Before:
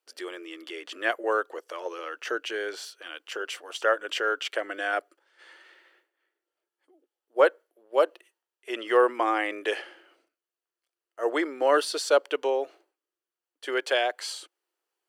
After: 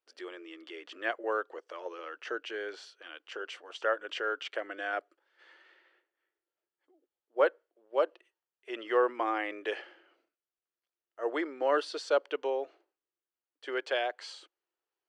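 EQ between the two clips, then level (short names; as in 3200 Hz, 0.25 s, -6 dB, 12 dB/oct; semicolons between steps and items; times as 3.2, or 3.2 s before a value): air absorption 110 m; -5.5 dB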